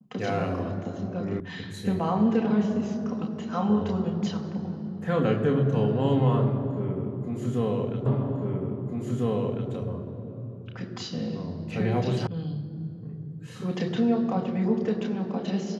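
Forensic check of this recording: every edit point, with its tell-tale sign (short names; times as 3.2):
1.4 sound cut off
8.06 repeat of the last 1.65 s
12.27 sound cut off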